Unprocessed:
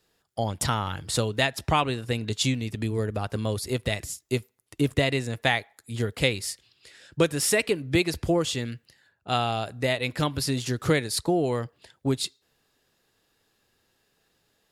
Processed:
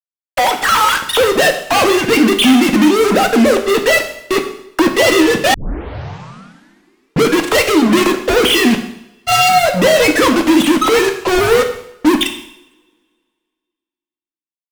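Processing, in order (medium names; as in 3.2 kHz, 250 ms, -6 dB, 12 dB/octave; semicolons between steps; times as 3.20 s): formants replaced by sine waves; 8.54–9.49 s: peaking EQ 2.5 kHz +13 dB 0.26 oct; fuzz box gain 45 dB, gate -42 dBFS; two-slope reverb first 0.71 s, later 2 s, from -26 dB, DRR 4 dB; level rider gain up to 4 dB; 5.54 s: tape start 1.78 s; trim +1 dB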